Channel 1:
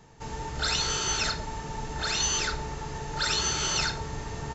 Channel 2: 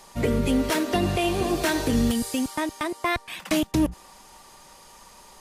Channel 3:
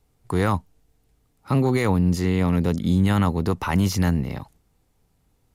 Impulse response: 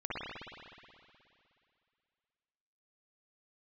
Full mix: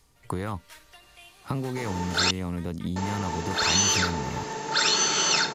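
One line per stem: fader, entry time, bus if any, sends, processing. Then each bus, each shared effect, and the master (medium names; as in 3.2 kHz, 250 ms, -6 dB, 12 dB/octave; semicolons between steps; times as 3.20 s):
+1.5 dB, 1.55 s, muted 2.31–2.96 s, no send, high-pass 190 Hz 24 dB/octave; level rider gain up to 3.5 dB
-13.0 dB, 0.00 s, no send, high-pass 1.3 kHz 12 dB/octave; level rider gain up to 6 dB; auto duck -12 dB, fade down 0.25 s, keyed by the third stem
+1.0 dB, 0.00 s, no send, compression 10:1, threshold -28 dBFS, peak gain reduction 13.5 dB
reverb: none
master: none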